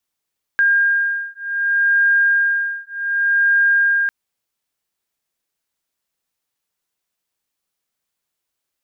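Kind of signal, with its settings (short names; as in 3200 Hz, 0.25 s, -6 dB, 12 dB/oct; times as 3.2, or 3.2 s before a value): beating tones 1610 Hz, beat 0.66 Hz, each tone -17 dBFS 3.50 s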